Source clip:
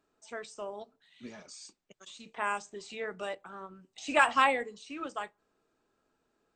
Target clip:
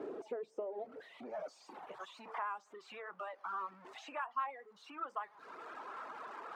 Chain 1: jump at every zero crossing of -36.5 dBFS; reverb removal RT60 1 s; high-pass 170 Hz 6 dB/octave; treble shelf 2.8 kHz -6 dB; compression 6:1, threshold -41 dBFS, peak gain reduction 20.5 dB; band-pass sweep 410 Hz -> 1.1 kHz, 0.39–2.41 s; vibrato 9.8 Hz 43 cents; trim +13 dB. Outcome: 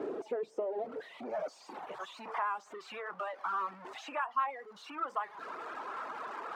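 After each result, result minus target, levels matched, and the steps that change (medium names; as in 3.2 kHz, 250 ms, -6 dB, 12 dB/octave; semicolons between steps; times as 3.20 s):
compression: peak gain reduction -5.5 dB; jump at every zero crossing: distortion +5 dB
change: compression 6:1, threshold -47.5 dBFS, peak gain reduction 26 dB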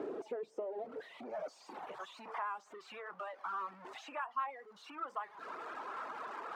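jump at every zero crossing: distortion +5 dB
change: jump at every zero crossing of -42.5 dBFS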